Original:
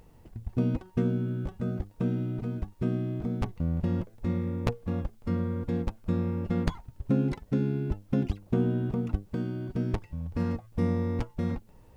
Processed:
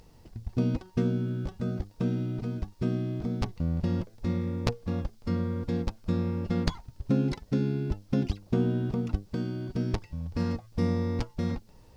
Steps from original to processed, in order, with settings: peaking EQ 4.9 kHz +10.5 dB 0.97 oct

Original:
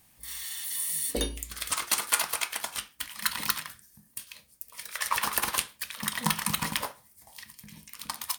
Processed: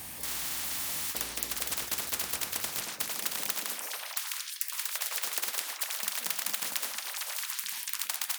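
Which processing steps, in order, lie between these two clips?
high-pass sweep 68 Hz -> 1.8 kHz, 2.45–4.00 s; repeats whose band climbs or falls 226 ms, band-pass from 260 Hz, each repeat 1.4 oct, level -6 dB; spectrum-flattening compressor 10:1; trim -4.5 dB

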